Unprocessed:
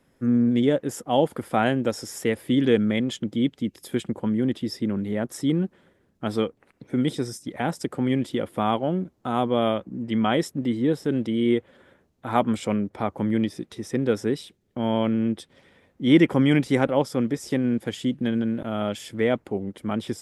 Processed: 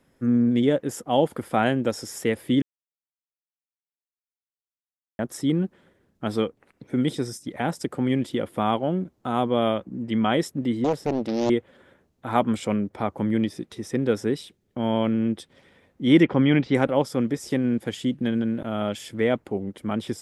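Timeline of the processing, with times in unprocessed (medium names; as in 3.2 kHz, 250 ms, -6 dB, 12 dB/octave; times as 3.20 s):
2.62–5.19 s: mute
10.84–11.50 s: loudspeaker Doppler distortion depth 0.73 ms
16.23–16.75 s: low-pass 4.5 kHz 24 dB/octave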